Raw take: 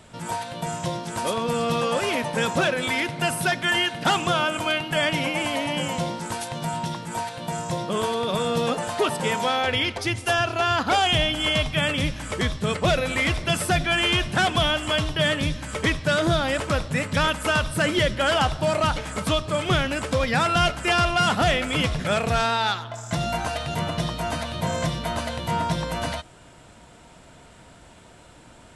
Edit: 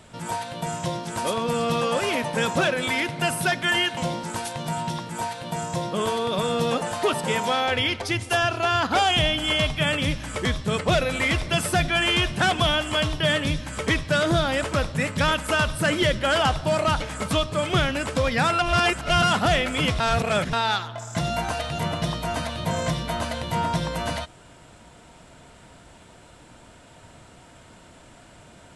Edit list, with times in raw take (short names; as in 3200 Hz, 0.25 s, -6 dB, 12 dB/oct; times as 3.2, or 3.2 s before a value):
3.97–5.93 cut
20.55–21.19 reverse
21.96–22.49 reverse